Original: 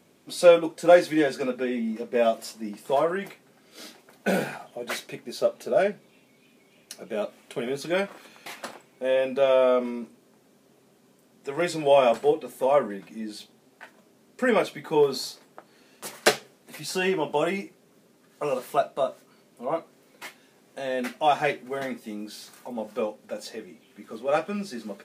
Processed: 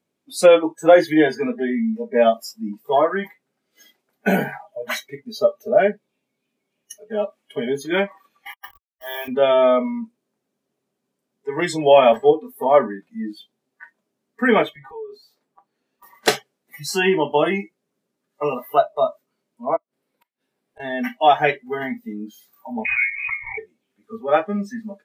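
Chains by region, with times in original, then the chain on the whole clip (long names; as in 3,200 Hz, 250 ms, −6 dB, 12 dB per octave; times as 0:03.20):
0:08.52–0:09.28: hold until the input has moved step −31.5 dBFS + high-pass filter 1,100 Hz 6 dB per octave
0:14.69–0:16.28: downward compressor 12 to 1, threshold −36 dBFS + high-shelf EQ 2,400 Hz −5 dB
0:19.76–0:20.80: parametric band 6,500 Hz −6.5 dB 0.37 octaves + gate with flip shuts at −30 dBFS, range −31 dB
0:22.85–0:23.58: high-frequency loss of the air 310 metres + voice inversion scrambler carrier 2,700 Hz + background raised ahead of every attack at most 29 dB per second
whole clip: noise reduction from a noise print of the clip's start 25 dB; boost into a limiter +8.5 dB; level −1 dB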